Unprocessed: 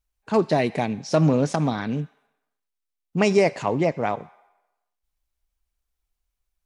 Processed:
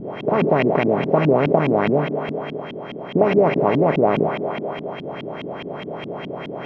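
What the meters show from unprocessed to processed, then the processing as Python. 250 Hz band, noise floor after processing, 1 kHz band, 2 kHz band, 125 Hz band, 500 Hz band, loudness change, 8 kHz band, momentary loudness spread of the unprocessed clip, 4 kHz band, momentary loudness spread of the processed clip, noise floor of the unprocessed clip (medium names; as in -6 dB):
+4.0 dB, -33 dBFS, +6.0 dB, +4.5 dB, +2.0 dB, +6.5 dB, +3.5 dB, under -15 dB, 11 LU, +2.0 dB, 14 LU, -82 dBFS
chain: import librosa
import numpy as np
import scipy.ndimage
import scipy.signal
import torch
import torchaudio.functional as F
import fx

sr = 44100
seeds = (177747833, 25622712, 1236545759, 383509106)

y = fx.bin_compress(x, sr, power=0.2)
y = y + 10.0 ** (-33.0 / 20.0) * np.sin(2.0 * np.pi * 3200.0 * np.arange(len(y)) / sr)
y = fx.filter_lfo_lowpass(y, sr, shape='saw_up', hz=4.8, low_hz=210.0, high_hz=2900.0, q=2.6)
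y = F.gain(torch.from_numpy(y), -6.5).numpy()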